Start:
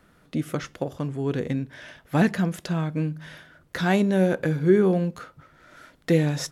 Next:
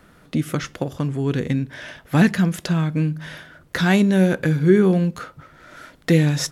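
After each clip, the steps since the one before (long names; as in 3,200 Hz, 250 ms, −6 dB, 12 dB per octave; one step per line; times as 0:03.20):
dynamic equaliser 610 Hz, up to −7 dB, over −36 dBFS, Q 0.74
level +7 dB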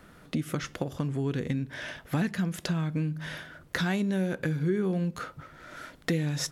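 downward compressor 3 to 1, threshold −26 dBFS, peak gain reduction 12.5 dB
level −2 dB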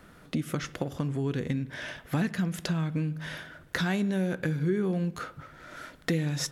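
spring reverb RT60 1.3 s, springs 49 ms, chirp 60 ms, DRR 19 dB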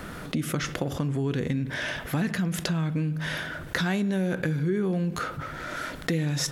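envelope flattener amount 50%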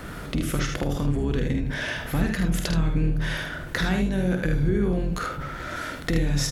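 sub-octave generator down 2 octaves, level −1 dB
ambience of single reflections 49 ms −7.5 dB, 77 ms −6.5 dB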